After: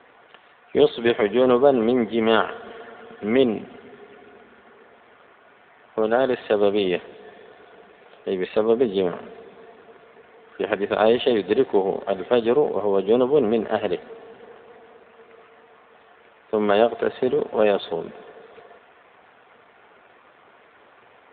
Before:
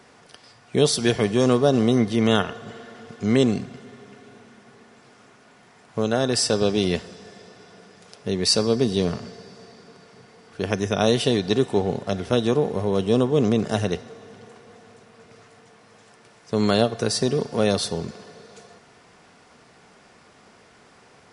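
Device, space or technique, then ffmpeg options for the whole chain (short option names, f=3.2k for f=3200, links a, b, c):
telephone: -af "highpass=360,lowpass=3.6k,volume=5dB" -ar 8000 -c:a libopencore_amrnb -b:a 7400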